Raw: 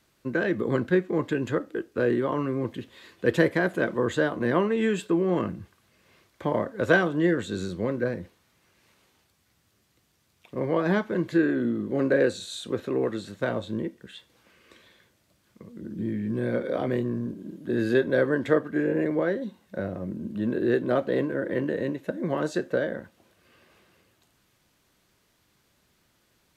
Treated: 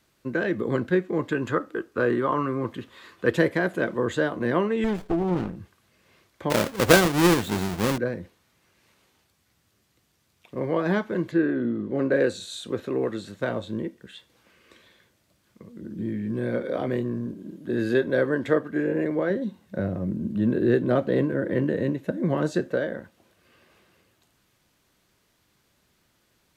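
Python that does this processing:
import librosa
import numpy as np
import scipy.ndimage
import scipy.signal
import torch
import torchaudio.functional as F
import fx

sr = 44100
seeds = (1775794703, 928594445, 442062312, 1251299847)

y = fx.peak_eq(x, sr, hz=1200.0, db=9.0, octaves=0.75, at=(1.32, 3.3))
y = fx.running_max(y, sr, window=33, at=(4.84, 5.56))
y = fx.halfwave_hold(y, sr, at=(6.5, 7.98))
y = fx.lowpass(y, sr, hz=fx.line((11.3, 2000.0), (12.12, 3700.0)), slope=6, at=(11.3, 12.12), fade=0.02)
y = fx.peak_eq(y, sr, hz=120.0, db=7.5, octaves=2.4, at=(19.3, 22.72))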